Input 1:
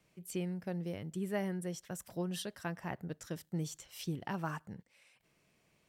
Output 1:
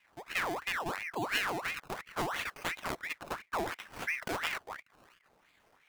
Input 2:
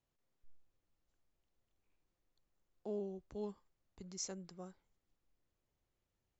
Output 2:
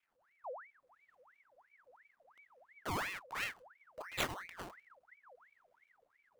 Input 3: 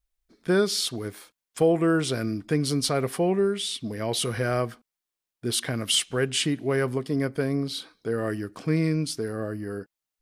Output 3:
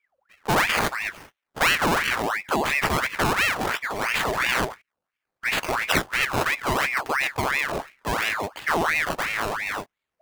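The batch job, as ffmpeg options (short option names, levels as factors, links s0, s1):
-filter_complex "[0:a]asplit=2[s0][s1];[s1]alimiter=limit=0.1:level=0:latency=1:release=71,volume=1.12[s2];[s0][s2]amix=inputs=2:normalize=0,highshelf=f=5100:g=7.5,aresample=16000,aresample=44100,asubboost=boost=4:cutoff=90,acrusher=samples=23:mix=1:aa=0.000001:lfo=1:lforange=23:lforate=0.67,aeval=exprs='val(0)*sin(2*PI*1400*n/s+1400*0.65/2.9*sin(2*PI*2.9*n/s))':c=same"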